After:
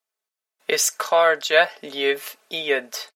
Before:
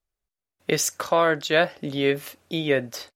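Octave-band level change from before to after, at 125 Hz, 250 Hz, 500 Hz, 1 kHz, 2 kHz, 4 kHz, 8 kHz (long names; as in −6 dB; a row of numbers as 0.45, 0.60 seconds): below −15 dB, −9.5 dB, +2.0 dB, +3.0 dB, +4.5 dB, +4.5 dB, +4.5 dB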